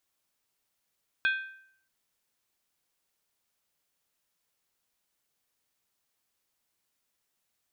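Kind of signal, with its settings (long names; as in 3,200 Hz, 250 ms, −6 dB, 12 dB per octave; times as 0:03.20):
struck skin, lowest mode 1,560 Hz, decay 0.65 s, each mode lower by 6 dB, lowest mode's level −21.5 dB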